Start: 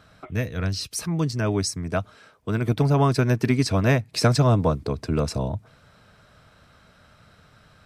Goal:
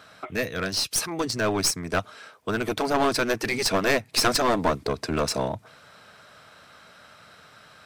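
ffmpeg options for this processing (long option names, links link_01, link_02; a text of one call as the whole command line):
ffmpeg -i in.wav -af "afftfilt=real='re*lt(hypot(re,im),0.631)':imag='im*lt(hypot(re,im),0.631)':win_size=1024:overlap=0.75,highpass=frequency=550:poles=1,aeval=exprs='clip(val(0),-1,0.0299)':channel_layout=same,volume=7dB" out.wav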